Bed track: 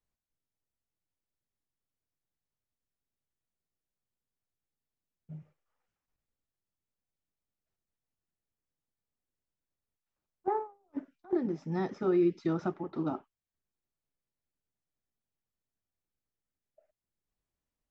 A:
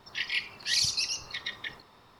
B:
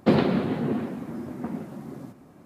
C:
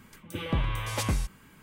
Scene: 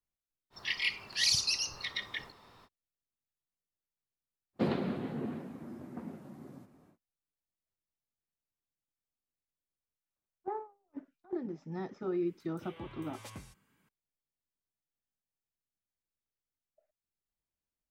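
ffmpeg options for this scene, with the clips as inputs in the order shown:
-filter_complex "[0:a]volume=-7dB[a];[3:a]highpass=100[b];[1:a]atrim=end=2.19,asetpts=PTS-STARTPTS,volume=-1.5dB,afade=t=in:d=0.05,afade=t=out:st=2.14:d=0.05,adelay=500[c];[2:a]atrim=end=2.45,asetpts=PTS-STARTPTS,volume=-11dB,afade=t=in:d=0.1,afade=t=out:st=2.35:d=0.1,adelay=199773S[d];[b]atrim=end=1.62,asetpts=PTS-STARTPTS,volume=-17.5dB,afade=t=in:d=0.004:c=hsin,afade=t=out:st=1.616:d=0.004:c=hsin,adelay=12270[e];[a][c][d][e]amix=inputs=4:normalize=0"

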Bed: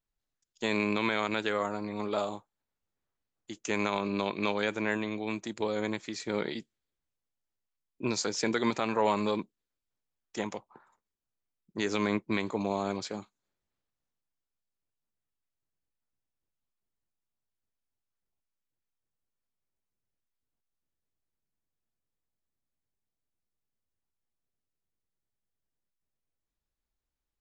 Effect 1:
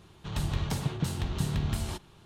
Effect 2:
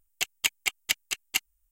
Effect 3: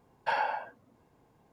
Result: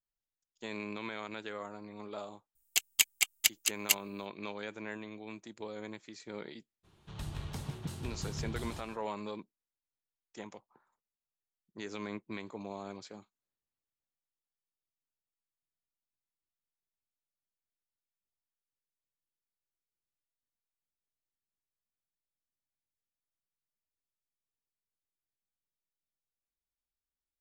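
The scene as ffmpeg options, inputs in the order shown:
-filter_complex "[0:a]volume=-11.5dB[a];[2:a]highshelf=f=3.2k:g=11.5[b];[1:a]aecho=1:1:156:0.316[c];[b]atrim=end=1.71,asetpts=PTS-STARTPTS,volume=-7.5dB,afade=t=in:d=0.004:c=hsin,afade=t=out:st=1.706:d=0.004:c=hsin,adelay=2550[d];[c]atrim=end=2.25,asetpts=PTS-STARTPTS,volume=-10dB,afade=t=in:d=0.02,afade=t=out:st=2.23:d=0.02,adelay=6830[e];[a][d][e]amix=inputs=3:normalize=0"

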